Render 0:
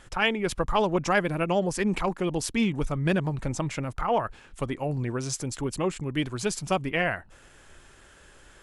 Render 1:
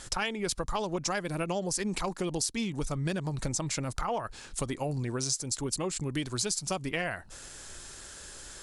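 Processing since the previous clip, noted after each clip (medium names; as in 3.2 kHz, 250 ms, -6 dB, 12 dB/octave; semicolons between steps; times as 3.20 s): high-order bell 6.4 kHz +12 dB; compression 6:1, threshold -32 dBFS, peak gain reduction 15.5 dB; trim +3 dB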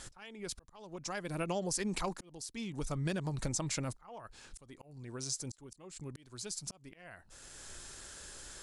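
slow attack 754 ms; trim -3.5 dB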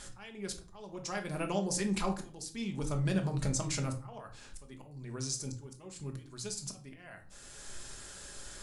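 reverberation RT60 0.45 s, pre-delay 5 ms, DRR 3.5 dB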